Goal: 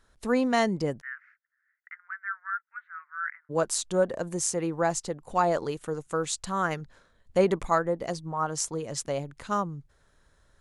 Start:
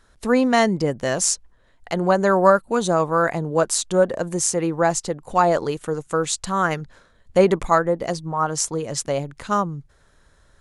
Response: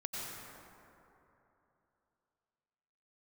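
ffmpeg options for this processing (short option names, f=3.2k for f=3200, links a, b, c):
-filter_complex "[0:a]asplit=3[a][b][c];[a]afade=t=out:st=1:d=0.02[d];[b]asuperpass=centerf=1700:order=8:qfactor=2.1,afade=t=in:st=1:d=0.02,afade=t=out:st=3.49:d=0.02[e];[c]afade=t=in:st=3.49:d=0.02[f];[d][e][f]amix=inputs=3:normalize=0,volume=-7dB"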